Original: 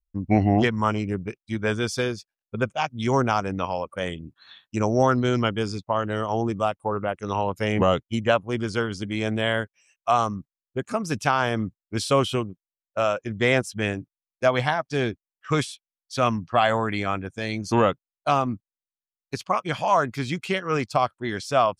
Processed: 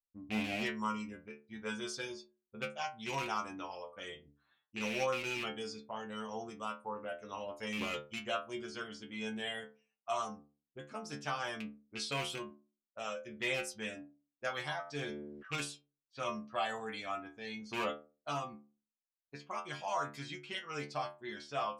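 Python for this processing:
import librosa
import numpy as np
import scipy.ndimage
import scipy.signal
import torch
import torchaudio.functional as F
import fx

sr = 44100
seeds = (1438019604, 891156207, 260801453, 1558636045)

y = fx.rattle_buzz(x, sr, strikes_db=-21.0, level_db=-14.0)
y = fx.low_shelf(y, sr, hz=190.0, db=-7.0)
y = fx.env_lowpass(y, sr, base_hz=950.0, full_db=-21.5)
y = fx.high_shelf(y, sr, hz=3200.0, db=10.0)
y = fx.stiff_resonator(y, sr, f0_hz=71.0, decay_s=0.4, stiffness=0.002)
y = fx.sustainer(y, sr, db_per_s=31.0, at=(14.83, 15.56))
y = F.gain(torch.from_numpy(y), -6.5).numpy()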